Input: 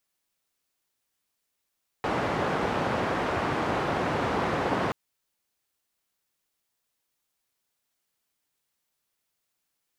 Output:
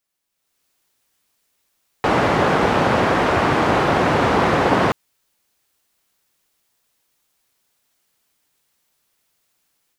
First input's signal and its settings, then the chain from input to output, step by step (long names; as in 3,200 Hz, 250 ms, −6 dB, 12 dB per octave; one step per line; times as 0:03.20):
band-limited noise 90–1,000 Hz, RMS −27.5 dBFS 2.88 s
automatic gain control gain up to 11 dB